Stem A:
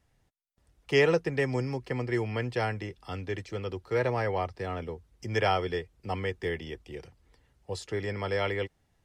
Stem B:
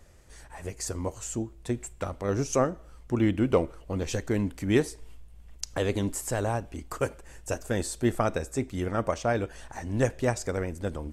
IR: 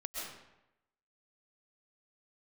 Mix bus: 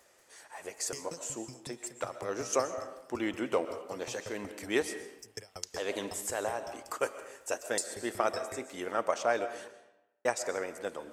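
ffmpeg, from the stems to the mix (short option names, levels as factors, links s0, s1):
-filter_complex "[0:a]alimiter=limit=0.0891:level=0:latency=1:release=46,aexciter=amount=10.5:drive=9.1:freq=5000,aeval=exprs='val(0)*pow(10,-40*if(lt(mod(5.4*n/s,1),2*abs(5.4)/1000),1-mod(5.4*n/s,1)/(2*abs(5.4)/1000),(mod(5.4*n/s,1)-2*abs(5.4)/1000)/(1-2*abs(5.4)/1000))/20)':c=same,volume=0.335,asplit=2[s0][s1];[1:a]highpass=480,volume=0.794,asplit=3[s2][s3][s4];[s2]atrim=end=9.71,asetpts=PTS-STARTPTS,afade=t=out:st=9.706:d=0.004:c=hsin[s5];[s3]atrim=start=9.71:end=10.25,asetpts=PTS-STARTPTS,volume=0[s6];[s4]atrim=start=10.25,asetpts=PTS-STARTPTS,afade=t=in:d=0.004:c=hsin[s7];[s5][s6][s7]concat=n=3:v=0:a=1,asplit=2[s8][s9];[s9]volume=0.335[s10];[s1]apad=whole_len=490622[s11];[s8][s11]sidechaincompress=threshold=0.00355:ratio=8:attack=41:release=229[s12];[2:a]atrim=start_sample=2205[s13];[s10][s13]afir=irnorm=-1:irlink=0[s14];[s0][s12][s14]amix=inputs=3:normalize=0"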